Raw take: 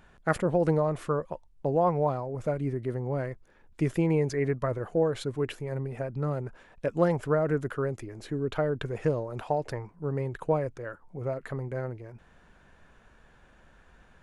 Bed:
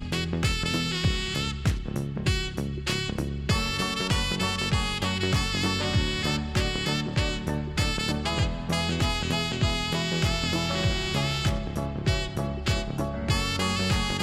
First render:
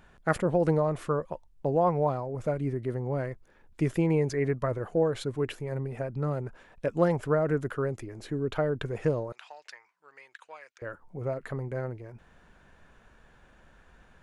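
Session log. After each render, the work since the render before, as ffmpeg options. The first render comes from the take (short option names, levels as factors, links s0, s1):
-filter_complex "[0:a]asettb=1/sr,asplit=3[s0][s1][s2];[s0]atrim=end=9.324[s3];[s1]atrim=start=9.32:end=10.82,asetpts=PTS-STARTPTS,afade=t=in:d=0.004:c=qsin,afade=t=out:st=1.496:d=0.004:c=qsin,asuperpass=centerf=3600:order=4:qfactor=0.66[s4];[s2]atrim=start=10.816[s5];[s3][s4]acrossfade=d=0.004:c1=hsin:c2=qsin[s6];[s6][s5]acrossfade=d=0.004:c1=qsin:c2=hsin"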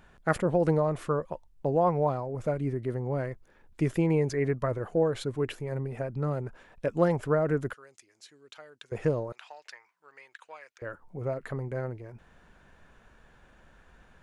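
-filter_complex "[0:a]asettb=1/sr,asplit=3[s0][s1][s2];[s0]atrim=end=7.734[s3];[s1]atrim=start=7.73:end=8.92,asetpts=PTS-STARTPTS,afade=t=in:d=0.004:c=qsin,afade=t=out:st=1.186:d=0.004:c=qsin,bandpass=f=5900:t=q:w=1.2[s4];[s2]atrim=start=8.916[s5];[s3][s4]acrossfade=d=0.004:c1=hsin:c2=qsin[s6];[s6][s5]acrossfade=d=0.004:c1=qsin:c2=hsin"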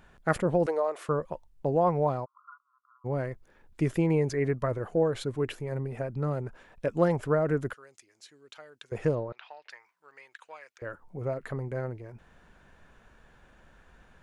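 -filter_complex "[0:a]asettb=1/sr,asplit=3[s0][s1][s2];[s0]atrim=end=0.664[s3];[s1]atrim=start=0.66:end=1.09,asetpts=PTS-STARTPTS,afade=t=in:d=0.004:c=qsin,afade=t=out:st=0.426:d=0.004:c=qsin,highpass=f=410:w=0.5412,highpass=f=410:w=1.3066[s4];[s2]atrim=start=1.086[s5];[s3][s4]acrossfade=d=0.004:c1=hsin:c2=qsin[s6];[s6][s5]acrossfade=d=0.004:c1=qsin:c2=hsin,asplit=3[s7][s8][s9];[s7]afade=t=out:st=2.24:d=0.02[s10];[s8]asuperpass=centerf=1200:order=12:qfactor=3,afade=t=in:st=2.24:d=0.02,afade=t=out:st=3.04:d=0.02[s11];[s9]afade=t=in:st=3.04:d=0.02[s12];[s10][s11][s12]amix=inputs=3:normalize=0,asettb=1/sr,asplit=3[s13][s14][s15];[s13]atrim=end=9.154[s16];[s14]atrim=start=9.15:end=9.7,asetpts=PTS-STARTPTS,afade=t=in:d=0.004:c=qsin,afade=t=out:st=0.546:d=0.004:c=qsin,lowpass=f=4200:w=0.5412,lowpass=f=4200:w=1.3066[s17];[s15]atrim=start=9.696[s18];[s16][s17]acrossfade=d=0.004:c1=hsin:c2=qsin[s19];[s19][s18]acrossfade=d=0.004:c1=qsin:c2=hsin"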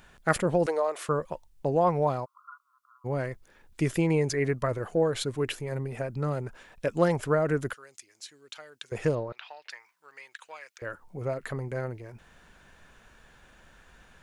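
-af "highshelf=f=2100:g=9.5"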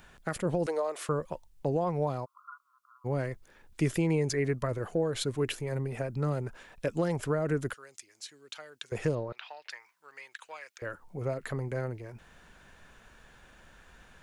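-filter_complex "[0:a]alimiter=limit=0.133:level=0:latency=1:release=248,acrossover=split=430|3000[s0][s1][s2];[s1]acompressor=threshold=0.0112:ratio=1.5[s3];[s0][s3][s2]amix=inputs=3:normalize=0"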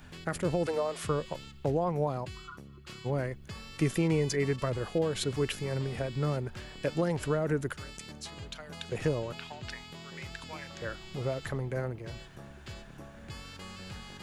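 -filter_complex "[1:a]volume=0.112[s0];[0:a][s0]amix=inputs=2:normalize=0"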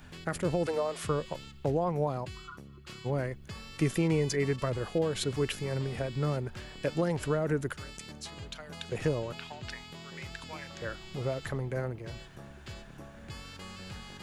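-af anull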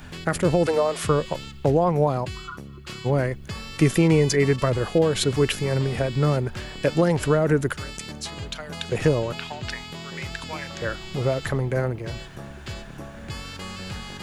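-af "volume=2.99"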